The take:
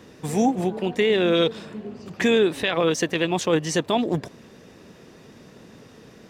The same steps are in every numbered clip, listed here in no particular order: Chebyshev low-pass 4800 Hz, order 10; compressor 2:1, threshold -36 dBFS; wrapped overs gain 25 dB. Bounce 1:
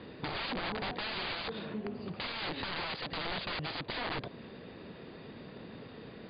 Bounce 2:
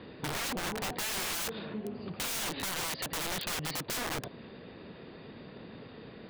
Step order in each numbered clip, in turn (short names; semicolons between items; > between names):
wrapped overs > compressor > Chebyshev low-pass; Chebyshev low-pass > wrapped overs > compressor